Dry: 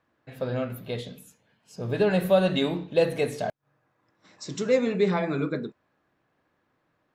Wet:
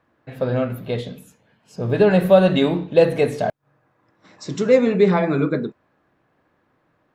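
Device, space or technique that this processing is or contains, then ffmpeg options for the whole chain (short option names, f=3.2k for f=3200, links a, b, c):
behind a face mask: -af "highshelf=f=3k:g=-8,volume=8dB"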